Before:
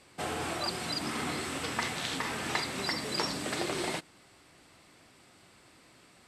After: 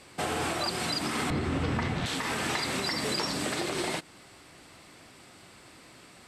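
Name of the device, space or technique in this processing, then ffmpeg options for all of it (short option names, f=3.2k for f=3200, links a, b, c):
clipper into limiter: -filter_complex "[0:a]asettb=1/sr,asplit=3[a][b][c];[a]atrim=end=1.304[d];[b]atrim=start=1.3:end=2.06,asetpts=PTS-STARTPTS,afade=t=in:d=0.004:c=qsin,afade=t=out:st=0.756:d=0.004:c=qsin,aemphasis=mode=reproduction:type=riaa[e];[c]atrim=start=2.056[f];[d][e]acrossfade=d=0.004:c1=hsin:c2=qsin[g];[g][f]acrossfade=d=0.004:c1=qsin:c2=hsin,asoftclip=type=hard:threshold=-20dB,alimiter=level_in=3dB:limit=-24dB:level=0:latency=1:release=164,volume=-3dB,volume=6.5dB"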